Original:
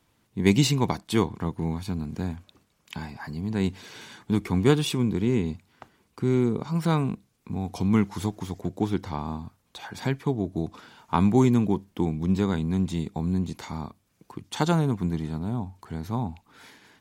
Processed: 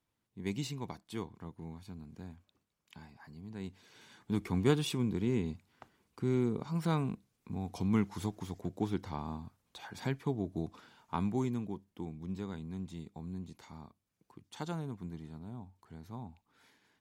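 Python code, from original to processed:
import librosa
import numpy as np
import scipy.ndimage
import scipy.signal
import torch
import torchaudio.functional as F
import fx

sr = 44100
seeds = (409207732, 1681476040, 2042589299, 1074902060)

y = fx.gain(x, sr, db=fx.line((3.86, -17.0), (4.4, -8.0), (10.64, -8.0), (11.69, -16.0)))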